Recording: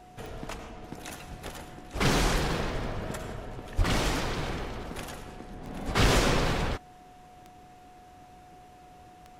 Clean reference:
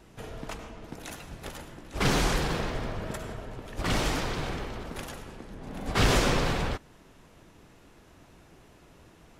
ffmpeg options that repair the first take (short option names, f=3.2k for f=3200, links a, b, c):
-filter_complex "[0:a]adeclick=t=4,bandreject=f=730:w=30,asplit=3[a][b][c];[a]afade=t=out:st=3.77:d=0.02[d];[b]highpass=f=140:w=0.5412,highpass=f=140:w=1.3066,afade=t=in:st=3.77:d=0.02,afade=t=out:st=3.89:d=0.02[e];[c]afade=t=in:st=3.89:d=0.02[f];[d][e][f]amix=inputs=3:normalize=0"